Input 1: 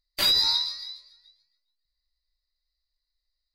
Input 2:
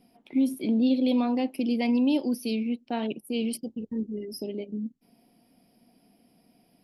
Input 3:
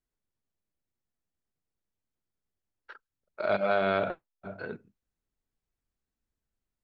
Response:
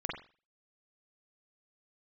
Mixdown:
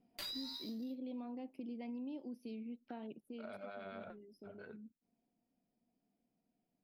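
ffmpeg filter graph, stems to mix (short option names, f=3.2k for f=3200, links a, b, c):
-filter_complex "[0:a]aeval=exprs='sgn(val(0))*max(abs(val(0))-0.0112,0)':c=same,volume=-12.5dB[a];[1:a]lowpass=f=1.5k:p=1,volume=-11.5dB,afade=t=out:st=3.16:d=0.3:silence=0.334965[b];[2:a]alimiter=limit=-19dB:level=0:latency=1:release=21,acrossover=split=1300[c][d];[c]aeval=exprs='val(0)*(1-0.5/2+0.5/2*cos(2*PI*9.8*n/s))':c=same[e];[d]aeval=exprs='val(0)*(1-0.5/2-0.5/2*cos(2*PI*9.8*n/s))':c=same[f];[e][f]amix=inputs=2:normalize=0,volume=-13.5dB[g];[a][b][g]amix=inputs=3:normalize=0,acompressor=threshold=-45dB:ratio=3"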